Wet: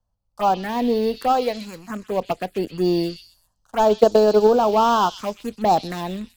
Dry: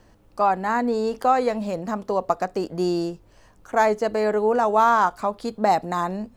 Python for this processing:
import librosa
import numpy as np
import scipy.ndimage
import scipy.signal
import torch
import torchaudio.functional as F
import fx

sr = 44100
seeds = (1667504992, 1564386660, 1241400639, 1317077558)

p1 = fx.low_shelf(x, sr, hz=350.0, db=-7.0, at=(1.28, 1.9))
p2 = np.where(np.abs(p1) >= 10.0 ** (-22.0 / 20.0), p1, 0.0)
p3 = p1 + (p2 * librosa.db_to_amplitude(-9.0))
p4 = fx.leveller(p3, sr, passes=2)
p5 = fx.transient(p4, sr, attack_db=9, sustain_db=-5, at=(3.85, 4.47))
p6 = fx.env_phaser(p5, sr, low_hz=350.0, high_hz=2100.0, full_db=-8.0)
p7 = p6 + fx.echo_stepped(p6, sr, ms=127, hz=3800.0, octaves=0.7, feedback_pct=70, wet_db=-2.0, dry=0)
p8 = fx.band_widen(p7, sr, depth_pct=40)
y = p8 * librosa.db_to_amplitude(-4.0)